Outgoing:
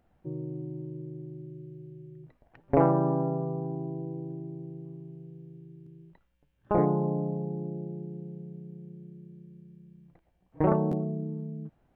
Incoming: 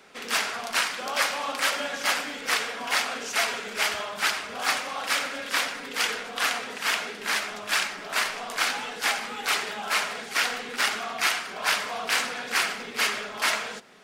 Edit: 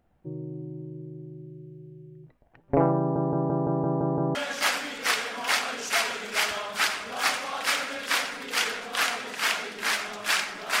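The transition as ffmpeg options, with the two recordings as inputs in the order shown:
ffmpeg -i cue0.wav -i cue1.wav -filter_complex "[0:a]apad=whole_dur=10.8,atrim=end=10.8,asplit=8[link_01][link_02][link_03][link_04][link_05][link_06][link_07][link_08];[link_01]atrim=end=3.162[link_09];[link_02]atrim=start=2.988:end=3.162[link_10];[link_03]atrim=start=2.988:end=3.162[link_11];[link_04]atrim=start=2.988:end=3.162[link_12];[link_05]atrim=start=2.988:end=3.162[link_13];[link_06]atrim=start=2.988:end=3.162[link_14];[link_07]atrim=start=2.988:end=3.162[link_15];[link_08]atrim=start=2.988:end=3.162[link_16];[1:a]atrim=start=1.778:end=8.23[link_17];[link_09][link_10]acrossfade=duration=0.004:curve1=hsin:curve2=hsin[link_18];[link_18][link_11]acrossfade=duration=0.004:curve1=hsin:curve2=hsin[link_19];[link_19][link_12]acrossfade=duration=0.004:curve1=hsin:curve2=hsin[link_20];[link_20][link_13]acrossfade=duration=0.004:curve1=hsin:curve2=hsin[link_21];[link_21][link_14]acrossfade=duration=0.004:curve1=hsin:curve2=hsin[link_22];[link_22][link_15]acrossfade=duration=0.004:curve1=hsin:curve2=hsin[link_23];[link_23][link_16]acrossfade=duration=0.004:curve1=hsin:curve2=hsin[link_24];[link_24][link_17]acrossfade=duration=0.004:curve1=hsin:curve2=hsin" out.wav

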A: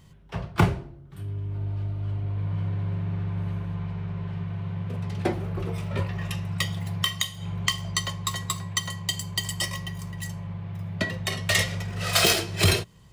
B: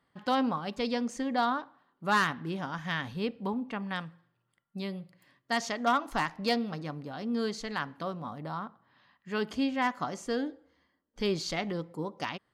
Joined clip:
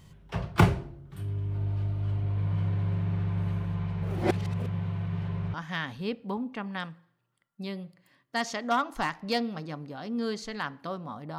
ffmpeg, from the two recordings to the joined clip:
ffmpeg -i cue0.wav -i cue1.wav -filter_complex "[0:a]apad=whole_dur=11.38,atrim=end=11.38,asplit=2[link_01][link_02];[link_01]atrim=end=4.022[link_03];[link_02]atrim=start=4.018:end=5.542,asetpts=PTS-STARTPTS,areverse[link_04];[1:a]atrim=start=2.698:end=8.54[link_05];[link_03][link_04]acrossfade=duration=0.004:curve1=hsin:curve2=hsin[link_06];[link_06][link_05]acrossfade=duration=0.004:curve1=hsin:curve2=hsin" out.wav

